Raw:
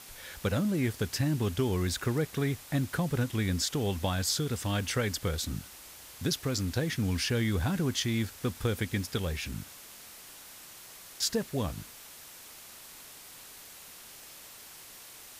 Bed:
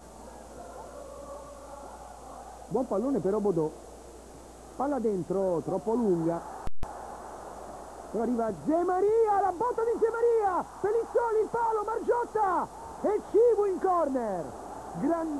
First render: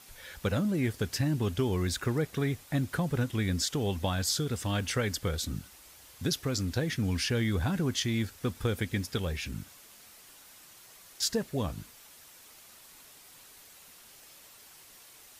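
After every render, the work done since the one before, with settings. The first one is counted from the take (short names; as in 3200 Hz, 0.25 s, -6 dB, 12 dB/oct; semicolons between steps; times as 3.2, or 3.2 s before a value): denoiser 6 dB, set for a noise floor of -50 dBFS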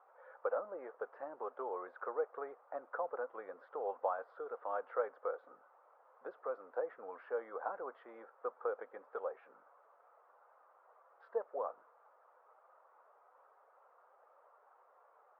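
elliptic band-pass 490–1300 Hz, stop band 70 dB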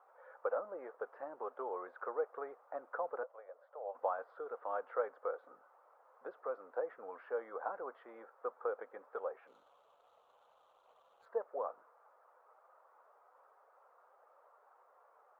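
3.23–3.95 ladder high-pass 540 Hz, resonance 70%; 9.47–11.26 median filter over 25 samples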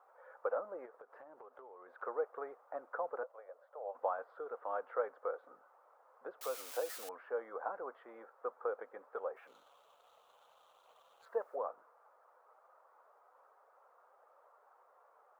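0.85–2.02 compressor 10:1, threshold -51 dBFS; 6.41–7.09 switching spikes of -34 dBFS; 9.36–11.56 high shelf 2000 Hz +10.5 dB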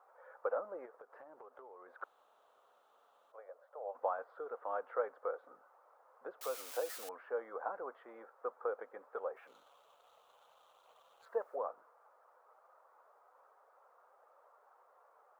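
2.04–3.32 room tone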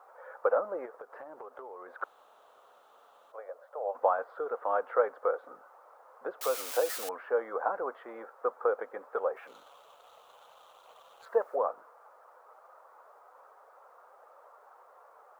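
gain +9.5 dB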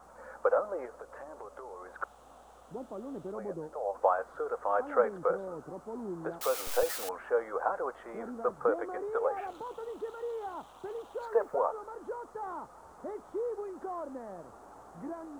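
add bed -13 dB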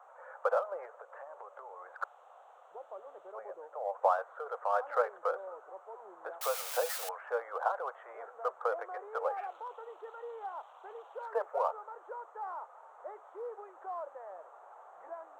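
Wiener smoothing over 9 samples; inverse Chebyshev high-pass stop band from 270 Hz, stop band 40 dB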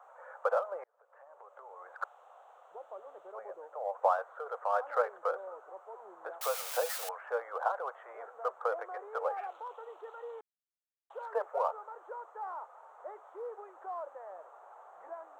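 0.84–1.93 fade in; 10.41–11.1 mute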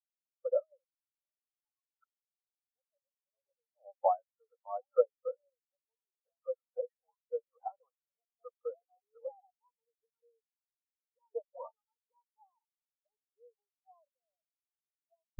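reverse; upward compressor, threshold -42 dBFS; reverse; spectral expander 4:1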